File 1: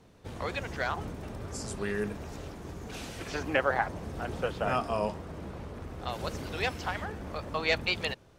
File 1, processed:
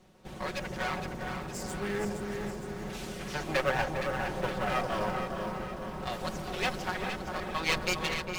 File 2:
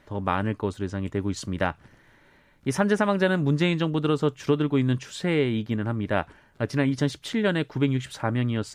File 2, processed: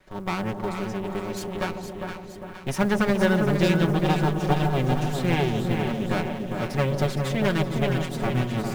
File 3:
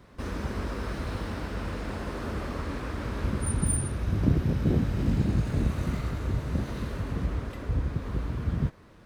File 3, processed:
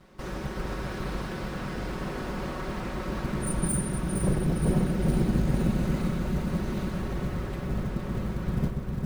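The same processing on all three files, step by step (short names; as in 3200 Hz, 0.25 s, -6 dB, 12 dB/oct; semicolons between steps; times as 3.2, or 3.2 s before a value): minimum comb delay 5.4 ms; darkening echo 0.403 s, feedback 59%, low-pass 1100 Hz, level -4 dB; short-mantissa float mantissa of 4-bit; split-band echo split 820 Hz, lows 0.145 s, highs 0.465 s, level -7.5 dB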